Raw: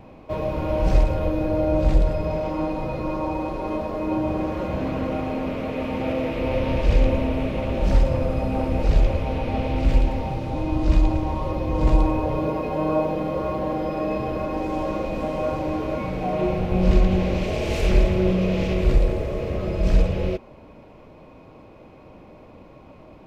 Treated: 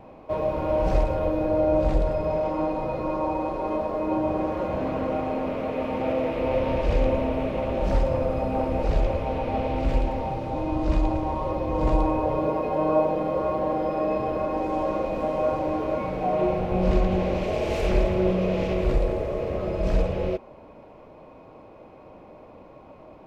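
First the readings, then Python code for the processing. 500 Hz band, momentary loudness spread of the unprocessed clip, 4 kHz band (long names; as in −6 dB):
+1.0 dB, 7 LU, −4.5 dB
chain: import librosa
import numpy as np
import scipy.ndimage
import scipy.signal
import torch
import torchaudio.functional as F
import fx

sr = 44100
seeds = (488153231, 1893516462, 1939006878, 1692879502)

y = fx.peak_eq(x, sr, hz=720.0, db=8.0, octaves=2.4)
y = y * librosa.db_to_amplitude(-6.0)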